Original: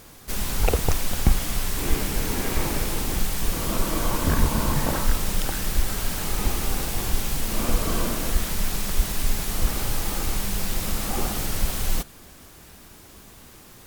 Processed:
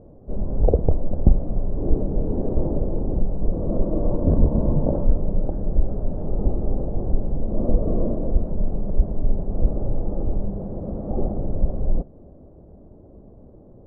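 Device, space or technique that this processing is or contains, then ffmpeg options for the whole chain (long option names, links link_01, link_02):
under water: -filter_complex "[0:a]asettb=1/sr,asplit=3[link_01][link_02][link_03];[link_01]atrim=end=10.504[link_04];[link_02]atrim=start=10.5:end=11.11,asetpts=PTS-STARTPTS,afade=type=in:duration=0.004:curve=qsin,afade=type=out:start_time=0.606:duration=0.004:curve=qsin,highpass=frequency=84:poles=1[link_05];[link_03]atrim=start=11.106[link_06];[link_04][link_05]acrossfade=duration=0.004:curve1=hsin:curve2=qsin[link_07];[link_07][link_06]acrossfade=duration=0.004:curve1=qsin:curve2=hsin,lowpass=frequency=590:width=0.5412,lowpass=frequency=590:width=1.3066,equalizer=frequency=590:width_type=o:width=0.42:gain=6,volume=4dB"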